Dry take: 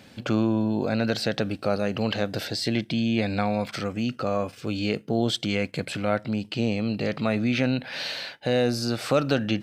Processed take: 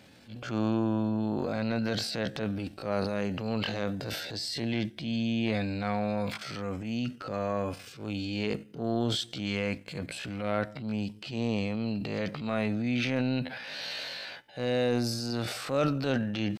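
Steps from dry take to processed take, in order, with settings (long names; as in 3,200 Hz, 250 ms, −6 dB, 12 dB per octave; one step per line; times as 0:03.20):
tempo change 0.58×
transient designer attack −8 dB, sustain +7 dB
level −5 dB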